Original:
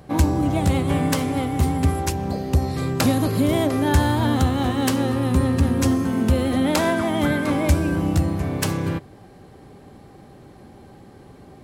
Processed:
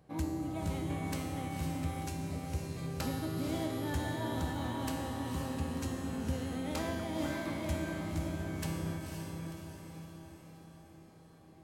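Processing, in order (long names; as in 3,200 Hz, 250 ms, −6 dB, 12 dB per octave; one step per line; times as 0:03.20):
tuned comb filter 160 Hz, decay 1.9 s, mix 90%
on a send: feedback delay with all-pass diffusion 512 ms, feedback 54%, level −4 dB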